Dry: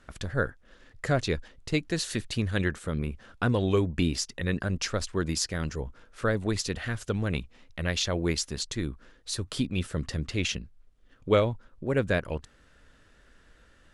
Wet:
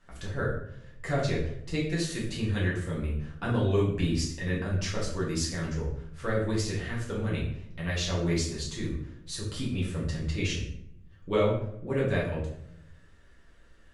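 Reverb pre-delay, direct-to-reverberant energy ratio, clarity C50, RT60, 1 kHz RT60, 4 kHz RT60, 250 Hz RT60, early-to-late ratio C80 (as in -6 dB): 6 ms, -6.5 dB, 4.0 dB, 0.75 s, 0.65 s, 0.45 s, 1.1 s, 8.0 dB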